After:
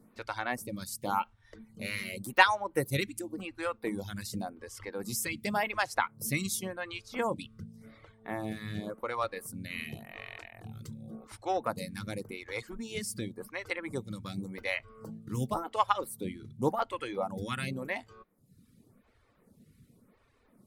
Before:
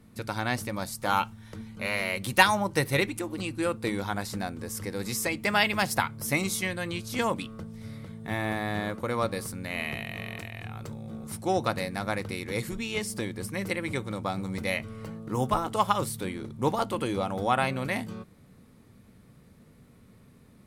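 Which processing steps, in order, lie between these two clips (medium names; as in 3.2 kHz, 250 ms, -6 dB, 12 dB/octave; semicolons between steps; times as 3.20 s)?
reverb removal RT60 0.98 s; 7.28–8.94 s: treble shelf 10 kHz -6.5 dB; lamp-driven phase shifter 0.9 Hz; trim -1 dB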